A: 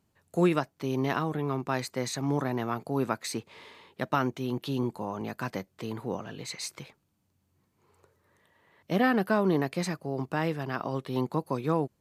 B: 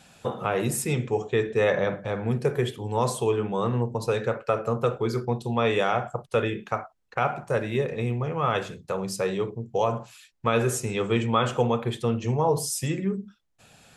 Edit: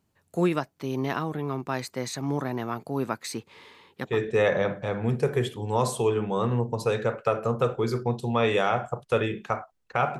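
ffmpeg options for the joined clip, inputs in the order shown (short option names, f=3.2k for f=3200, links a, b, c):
-filter_complex "[0:a]asettb=1/sr,asplit=3[a][b][c];[a]atrim=end=3.134[d];[b]atrim=start=3.13:end=4.2,asetpts=PTS-STARTPTS,afade=t=in:d=0.004:c=qsin,afade=t=out:st=1.066:d=0.004:c=qsin,bandreject=f=640:w=5.3[e];[c]atrim=start=4.196[f];[d][e]acrossfade=d=0.004:c1=hsin:c2=qsin[g];[g][f]acrossfade=d=0.004:c1=qsin:c2=hsin,apad=whole_dur=10.19,atrim=end=10.19,atrim=end=4.2,asetpts=PTS-STARTPTS[h];[1:a]atrim=start=1.24:end=7.41,asetpts=PTS-STARTPTS[i];[h][i]acrossfade=d=0.18:c1=tri:c2=tri"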